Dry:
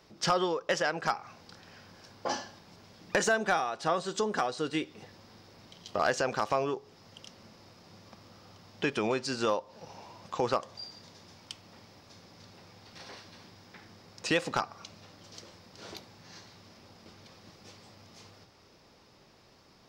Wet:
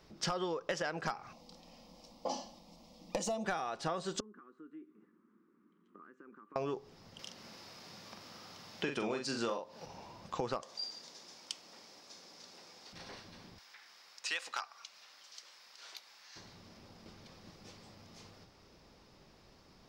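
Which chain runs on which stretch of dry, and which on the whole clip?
1.33–3.45 bell 480 Hz +12 dB 0.23 oct + fixed phaser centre 420 Hz, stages 6
4.2–6.56 EQ curve 130 Hz 0 dB, 200 Hz +14 dB, 320 Hz +6 dB, 460 Hz -15 dB, 700 Hz -27 dB, 1200 Hz +11 dB, 1800 Hz +6 dB, 5000 Hz -4 dB, 7900 Hz +14 dB + compressor 2.5:1, threshold -37 dBFS + ladder band-pass 470 Hz, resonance 55%
7.19–9.86 HPF 170 Hz 6 dB/oct + doubler 43 ms -6 dB + mismatched tape noise reduction encoder only
10.62–12.93 HPF 340 Hz + bell 6800 Hz +8 dB 1.6 oct
13.58–16.36 HPF 1300 Hz + upward compressor, threshold -49 dBFS
whole clip: low shelf 140 Hz +11 dB; compressor 6:1, threshold -29 dBFS; bell 100 Hz -7.5 dB 0.67 oct; gain -3 dB

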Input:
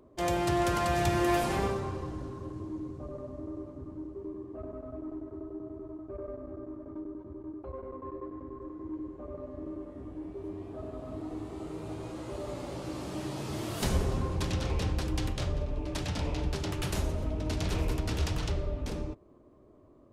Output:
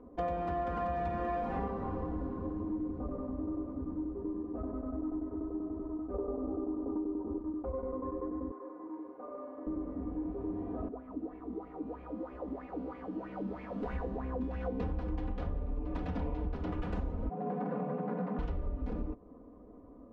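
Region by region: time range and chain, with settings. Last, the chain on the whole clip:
6.14–7.38 LPF 1800 Hz 24 dB/oct + small resonant body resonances 410/780 Hz, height 11 dB, ringing for 20 ms
8.51–9.67 HPF 540 Hz + flutter echo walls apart 6.4 m, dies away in 0.3 s
10.88–14.8 resonator 65 Hz, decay 1.5 s, mix 90% + LFO bell 3.1 Hz 220–2400 Hz +17 dB
17.29–18.39 median filter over 15 samples + tone controls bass -8 dB, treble -14 dB + frequency shift +110 Hz
whole clip: LPF 1200 Hz 12 dB/oct; comb 4.1 ms, depth 99%; compressor 6:1, threshold -35 dBFS; gain +3 dB

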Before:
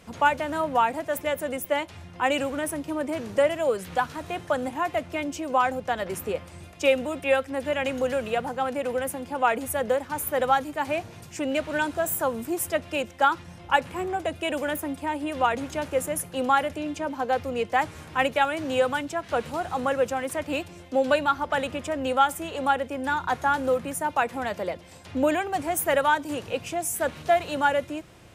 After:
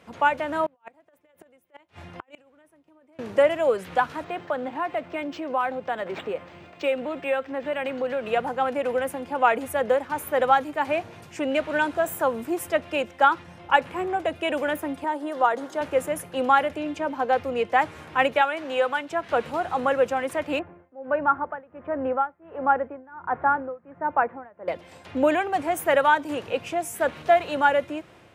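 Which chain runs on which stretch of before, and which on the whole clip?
0.66–3.19 negative-ratio compressor -28 dBFS, ratio -0.5 + flipped gate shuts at -25 dBFS, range -32 dB
4.24–8.27 HPF 120 Hz + compressor 1.5:1, threshold -32 dBFS + decimation joined by straight lines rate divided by 4×
15.04–15.81 HPF 290 Hz + bell 2500 Hz -13.5 dB 0.51 oct
18.41–19.11 HPF 530 Hz 6 dB/oct + high shelf 5600 Hz -4.5 dB
20.59–24.68 LPF 1700 Hz 24 dB/oct + tremolo 1.4 Hz, depth 94%
whole clip: HPF 72 Hz; tone controls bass -6 dB, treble -10 dB; AGC gain up to 3 dB

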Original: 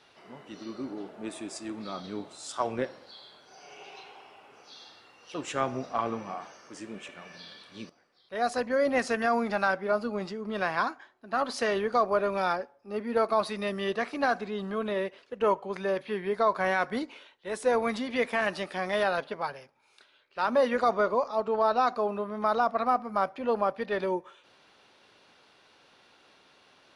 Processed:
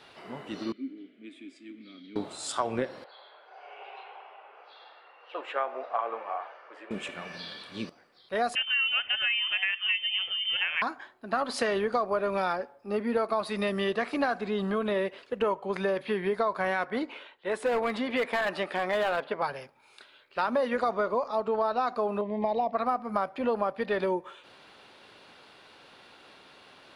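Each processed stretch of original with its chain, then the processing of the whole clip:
0.72–2.16 vowel filter i + low shelf 340 Hz -7.5 dB
3.04–6.91 HPF 510 Hz 24 dB/oct + air absorption 480 m
8.55–10.82 air absorption 430 m + inverted band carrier 3300 Hz
16.84–19.42 tone controls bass -7 dB, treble -10 dB + hard clip -24 dBFS
22.21–22.73 Chebyshev band-stop 870–2100 Hz + air absorption 180 m
whole clip: bell 5900 Hz -7 dB 0.34 oct; compressor 4:1, threshold -32 dBFS; gain +6.5 dB

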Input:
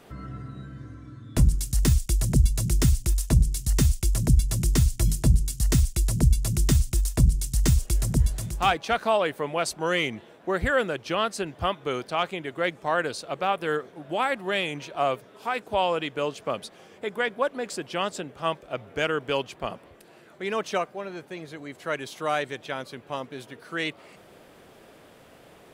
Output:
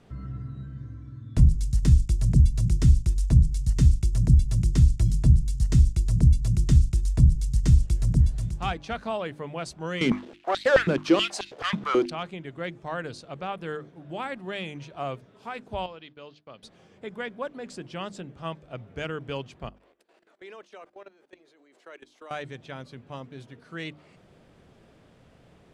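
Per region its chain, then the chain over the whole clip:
10.01–12.1 sample leveller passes 3 + stepped high-pass 9.3 Hz 210–3900 Hz
15.86–16.63 expander -39 dBFS + ladder low-pass 5200 Hz, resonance 50% + low shelf 180 Hz -9.5 dB
19.69–22.31 HPF 330 Hz 24 dB/oct + level quantiser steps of 18 dB
whole clip: LPF 7400 Hz 12 dB/oct; tone controls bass +13 dB, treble +1 dB; notches 50/100/150/200/250/300/350 Hz; gain -8.5 dB

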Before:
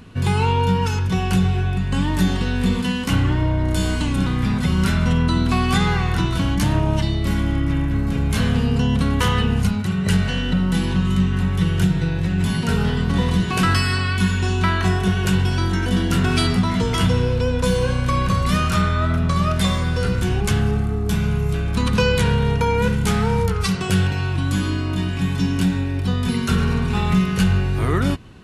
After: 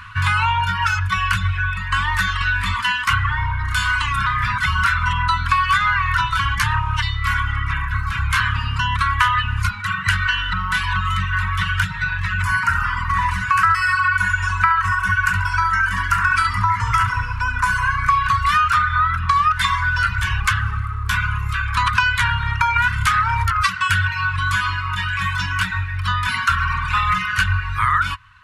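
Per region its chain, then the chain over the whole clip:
12.42–18.1 bell 3500 Hz -14 dB 0.65 oct + feedback echo 69 ms, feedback 53%, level -7 dB
22.76–23.51 bell 550 Hz -14 dB 0.27 oct + fast leveller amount 100%
whole clip: reverb removal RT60 1.4 s; EQ curve 110 Hz 0 dB, 160 Hz -15 dB, 350 Hz -29 dB, 690 Hz -29 dB, 1000 Hz +13 dB, 1500 Hz +15 dB, 2400 Hz +8 dB, 3700 Hz +3 dB, 6700 Hz -1 dB, 12000 Hz -3 dB; compressor 4:1, threshold -18 dBFS; gain +3.5 dB

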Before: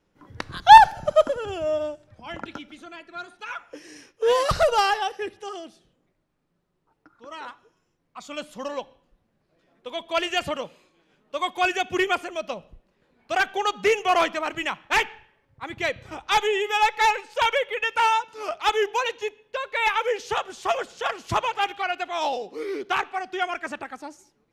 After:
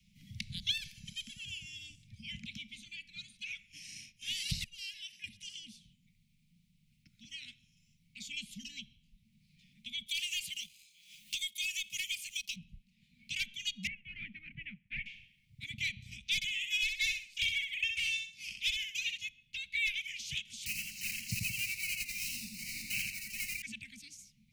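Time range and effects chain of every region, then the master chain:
0.71–1.9 low shelf 290 Hz -11.5 dB + compressor 4:1, threshold -14 dBFS
4.64–5.24 compressor, threshold -31 dBFS + three-band expander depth 100%
10.06–12.56 pre-emphasis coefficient 0.97 + sample leveller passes 2 + three-band squash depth 100%
13.87–15.06 G.711 law mismatch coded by A + LPF 1700 Hz 24 dB/oct
16.35–19.18 transient shaper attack +2 dB, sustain -7 dB + feedback echo 64 ms, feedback 29%, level -5.5 dB
20.66–23.62 block floating point 3-bit + Butterworth band-stop 3400 Hz, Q 3 + warbling echo 85 ms, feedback 39%, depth 87 cents, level -3 dB
whole clip: Chebyshev band-stop 220–2200 Hz, order 5; three-band squash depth 40%; gain -3.5 dB

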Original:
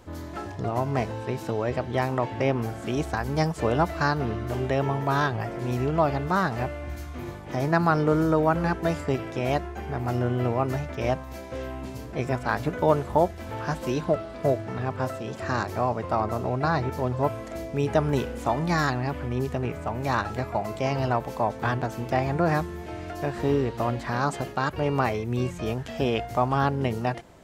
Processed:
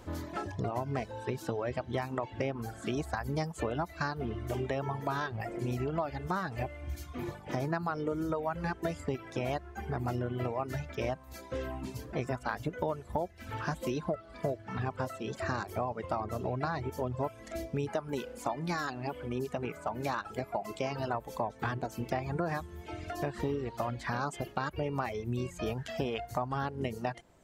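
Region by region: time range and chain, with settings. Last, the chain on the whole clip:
17.88–21.14 bell 72 Hz -11 dB 1.7 oct + notch 1900 Hz, Q 17
whole clip: reverb removal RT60 1.4 s; compressor, threshold -30 dBFS

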